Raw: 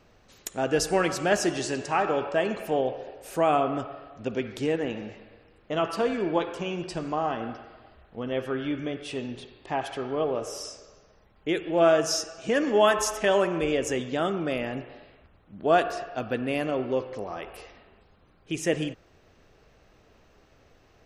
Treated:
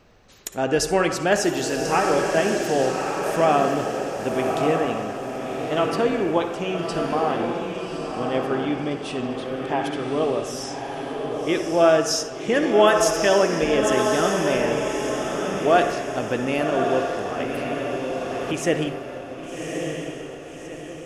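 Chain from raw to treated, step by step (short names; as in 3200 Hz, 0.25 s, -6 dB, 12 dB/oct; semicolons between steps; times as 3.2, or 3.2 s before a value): diffused feedback echo 1.162 s, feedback 47%, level -4 dB; reverb RT60 0.30 s, pre-delay 52 ms, DRR 11.5 dB; 17.4–18.53 three-band squash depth 100%; gain +3.5 dB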